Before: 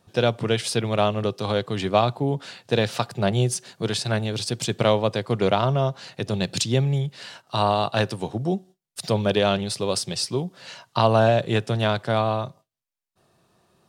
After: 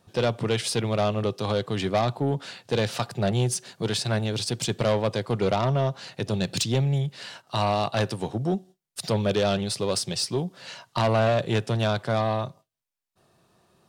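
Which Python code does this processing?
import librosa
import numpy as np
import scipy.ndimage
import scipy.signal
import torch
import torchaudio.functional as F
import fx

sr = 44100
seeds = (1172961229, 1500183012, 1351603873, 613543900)

y = 10.0 ** (-16.0 / 20.0) * np.tanh(x / 10.0 ** (-16.0 / 20.0))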